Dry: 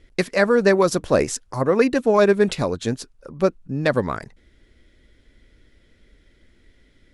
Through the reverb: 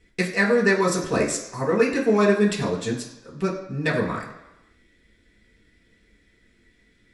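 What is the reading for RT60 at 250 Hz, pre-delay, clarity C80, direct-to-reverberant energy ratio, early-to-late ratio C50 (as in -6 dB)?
0.90 s, 3 ms, 10.5 dB, -4.5 dB, 7.5 dB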